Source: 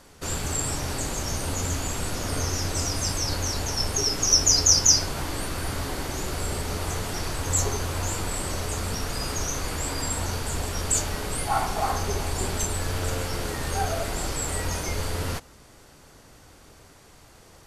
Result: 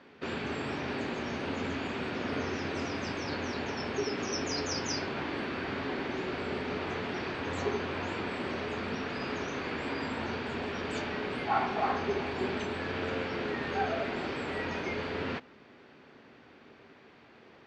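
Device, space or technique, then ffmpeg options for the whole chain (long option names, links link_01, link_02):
kitchen radio: -af "highpass=160,equalizer=frequency=240:width_type=q:width=4:gain=8,equalizer=frequency=390:width_type=q:width=4:gain=6,equalizer=frequency=1700:width_type=q:width=4:gain=4,equalizer=frequency=2400:width_type=q:width=4:gain=5,lowpass=frequency=3700:width=0.5412,lowpass=frequency=3700:width=1.3066,volume=-4dB"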